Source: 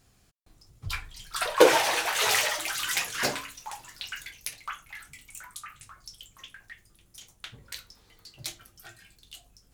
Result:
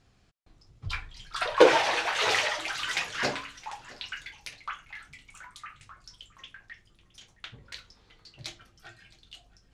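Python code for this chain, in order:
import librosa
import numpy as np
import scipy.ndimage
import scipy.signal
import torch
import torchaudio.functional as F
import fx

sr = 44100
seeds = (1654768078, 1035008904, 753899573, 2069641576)

p1 = scipy.signal.sosfilt(scipy.signal.butter(2, 4600.0, 'lowpass', fs=sr, output='sos'), x)
y = p1 + fx.echo_single(p1, sr, ms=666, db=-21.5, dry=0)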